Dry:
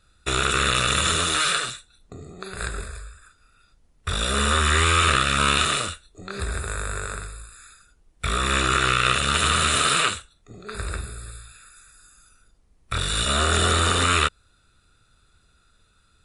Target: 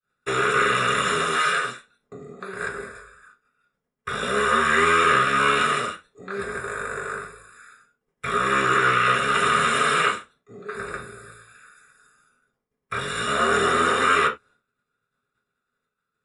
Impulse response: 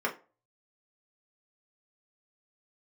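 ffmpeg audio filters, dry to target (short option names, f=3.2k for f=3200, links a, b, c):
-filter_complex "[0:a]agate=range=-33dB:threshold=-49dB:ratio=3:detection=peak[a];[1:a]atrim=start_sample=2205,atrim=end_sample=4410[b];[a][b]afir=irnorm=-1:irlink=0,volume=-7dB"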